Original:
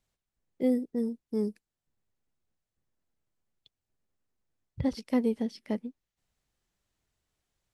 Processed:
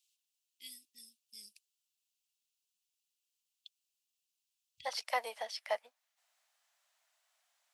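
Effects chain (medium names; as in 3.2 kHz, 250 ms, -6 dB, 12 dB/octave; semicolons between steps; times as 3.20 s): elliptic high-pass 2.7 kHz, stop band 50 dB, from 4.85 s 640 Hz; trim +7.5 dB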